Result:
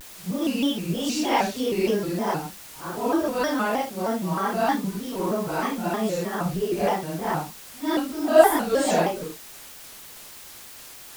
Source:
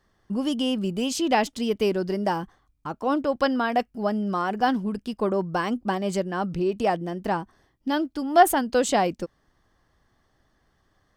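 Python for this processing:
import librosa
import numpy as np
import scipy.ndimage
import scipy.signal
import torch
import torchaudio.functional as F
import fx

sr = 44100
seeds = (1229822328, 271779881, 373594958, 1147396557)

y = fx.phase_scramble(x, sr, seeds[0], window_ms=200)
y = fx.dmg_noise_colour(y, sr, seeds[1], colour='white', level_db=-43.0)
y = fx.vibrato_shape(y, sr, shape='square', rate_hz=3.2, depth_cents=160.0)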